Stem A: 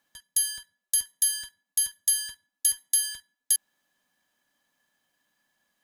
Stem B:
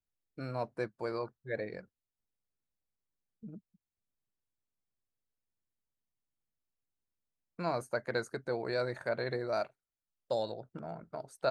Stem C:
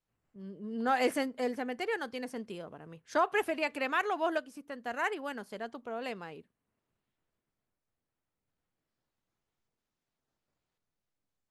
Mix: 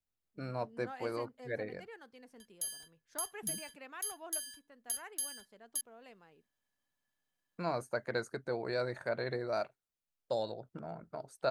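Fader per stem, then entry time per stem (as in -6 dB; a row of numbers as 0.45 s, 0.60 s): -14.5 dB, -1.5 dB, -17.5 dB; 2.25 s, 0.00 s, 0.00 s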